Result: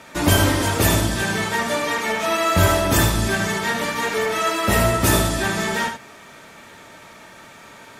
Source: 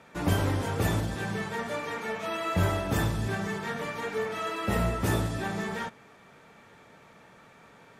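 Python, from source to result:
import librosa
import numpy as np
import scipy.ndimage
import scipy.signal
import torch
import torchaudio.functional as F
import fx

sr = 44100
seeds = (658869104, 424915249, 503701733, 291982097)

y = fx.high_shelf(x, sr, hz=2800.0, db=9.5)
y = y + 0.31 * np.pad(y, (int(3.2 * sr / 1000.0), 0))[:len(y)]
y = y + 10.0 ** (-7.5 / 20.0) * np.pad(y, (int(77 * sr / 1000.0), 0))[:len(y)]
y = y * 10.0 ** (8.5 / 20.0)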